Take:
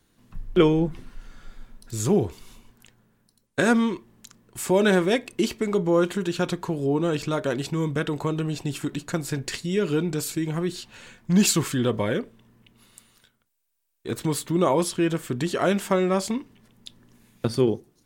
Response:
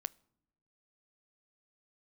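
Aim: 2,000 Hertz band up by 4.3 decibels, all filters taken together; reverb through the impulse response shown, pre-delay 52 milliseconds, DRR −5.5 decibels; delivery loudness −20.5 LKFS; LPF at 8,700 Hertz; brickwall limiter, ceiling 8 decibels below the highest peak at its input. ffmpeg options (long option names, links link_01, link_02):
-filter_complex "[0:a]lowpass=8700,equalizer=frequency=2000:width_type=o:gain=6,alimiter=limit=-13.5dB:level=0:latency=1,asplit=2[link_01][link_02];[1:a]atrim=start_sample=2205,adelay=52[link_03];[link_02][link_03]afir=irnorm=-1:irlink=0,volume=7.5dB[link_04];[link_01][link_04]amix=inputs=2:normalize=0,volume=-1.5dB"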